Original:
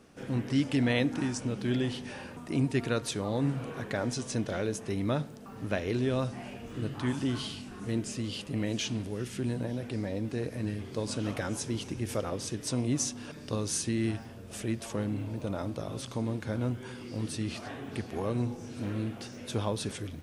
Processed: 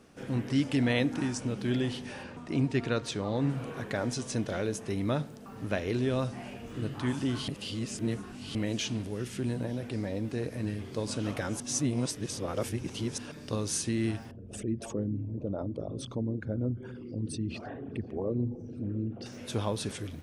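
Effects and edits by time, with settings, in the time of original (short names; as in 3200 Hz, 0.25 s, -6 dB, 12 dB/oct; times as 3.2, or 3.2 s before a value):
2.23–3.5 LPF 6400 Hz
7.48–8.55 reverse
11.6–13.18 reverse
14.31–19.26 formant sharpening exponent 2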